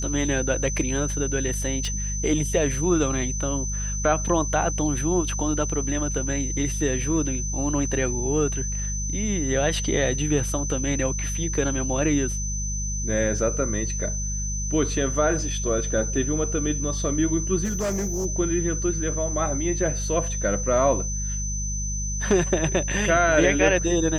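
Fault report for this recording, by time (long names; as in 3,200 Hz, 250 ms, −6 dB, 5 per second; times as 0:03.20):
mains hum 50 Hz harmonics 4 −29 dBFS
whistle 6,100 Hz −30 dBFS
0:01.85: click −18 dBFS
0:17.64–0:18.26: clipping −22.5 dBFS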